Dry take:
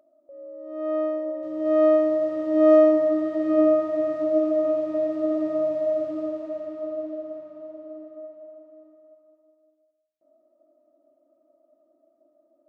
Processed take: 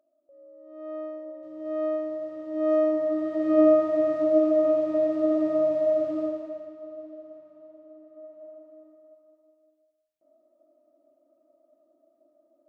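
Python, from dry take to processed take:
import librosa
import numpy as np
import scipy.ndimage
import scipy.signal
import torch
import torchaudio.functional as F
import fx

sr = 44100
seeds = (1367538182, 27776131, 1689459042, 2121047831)

y = fx.gain(x, sr, db=fx.line((2.51, -10.0), (3.67, 1.0), (6.23, 1.0), (6.79, -9.5), (8.02, -9.5), (8.46, -1.0)))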